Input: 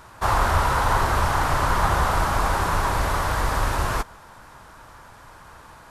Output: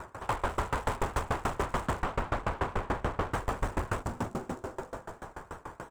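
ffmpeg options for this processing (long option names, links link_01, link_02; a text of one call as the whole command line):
ffmpeg -i in.wav -filter_complex "[0:a]acrossover=split=2400[link_01][link_02];[link_02]acrusher=samples=26:mix=1:aa=0.000001:lfo=1:lforange=15.6:lforate=3.2[link_03];[link_01][link_03]amix=inputs=2:normalize=0,equalizer=frequency=430:width_type=o:width=0.74:gain=7,asplit=2[link_04][link_05];[link_05]aeval=exprs='(mod(3.98*val(0)+1,2)-1)/3.98':channel_layout=same,volume=-10.5dB[link_06];[link_04][link_06]amix=inputs=2:normalize=0,equalizer=frequency=7800:width_type=o:width=0.6:gain=13.5,asplit=8[link_07][link_08][link_09][link_10][link_11][link_12][link_13][link_14];[link_08]adelay=260,afreqshift=-140,volume=-9dB[link_15];[link_09]adelay=520,afreqshift=-280,volume=-14dB[link_16];[link_10]adelay=780,afreqshift=-420,volume=-19.1dB[link_17];[link_11]adelay=1040,afreqshift=-560,volume=-24.1dB[link_18];[link_12]adelay=1300,afreqshift=-700,volume=-29.1dB[link_19];[link_13]adelay=1560,afreqshift=-840,volume=-34.2dB[link_20];[link_14]adelay=1820,afreqshift=-980,volume=-39.2dB[link_21];[link_07][link_15][link_16][link_17][link_18][link_19][link_20][link_21]amix=inputs=8:normalize=0,acompressor=threshold=-28dB:ratio=2,asoftclip=type=tanh:threshold=-25.5dB,asettb=1/sr,asplit=3[link_22][link_23][link_24];[link_22]atrim=end=2.024[link_25];[link_23]atrim=start=2.02:end=3.33,asetpts=PTS-STARTPTS,afade=type=in:duration=0.004:curve=qsin,afade=type=out:start_time=1.306:duration=0.004:curve=qsin,acrossover=split=4700[link_26][link_27];[link_27]acompressor=threshold=-56dB:ratio=4:attack=1:release=60[link_28];[link_26][link_28]amix=inputs=2:normalize=0[link_29];[link_24]atrim=start=3.326[link_30];[link_25][link_29]acrossfade=duration=0.004:curve1=hsin:curve2=qsin[link_31];[link_31][link_30]acrossfade=duration=0.004:curve1=qsin:curve2=hsin,aeval=exprs='val(0)*pow(10,-26*if(lt(mod(6.9*n/s,1),2*abs(6.9)/1000),1-mod(6.9*n/s,1)/(2*abs(6.9)/1000),(mod(6.9*n/s,1)-2*abs(6.9)/1000)/(1-2*abs(6.9)/1000))/20)':channel_layout=same,volume=5dB" out.wav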